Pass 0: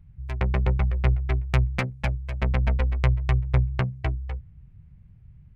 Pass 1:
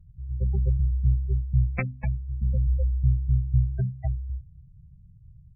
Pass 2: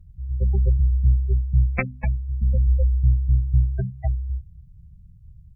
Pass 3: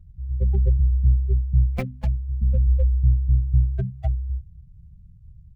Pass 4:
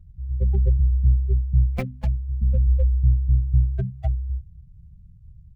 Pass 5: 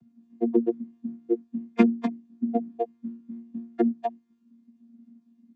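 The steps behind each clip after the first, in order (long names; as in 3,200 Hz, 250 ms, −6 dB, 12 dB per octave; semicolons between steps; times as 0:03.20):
gate on every frequency bin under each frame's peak −15 dB strong; mains-hum notches 50/100/150/200/250 Hz
parametric band 130 Hz −7 dB; level +6 dB
running median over 25 samples
no processing that can be heard
channel vocoder with a chord as carrier bare fifth, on A#3; level +3 dB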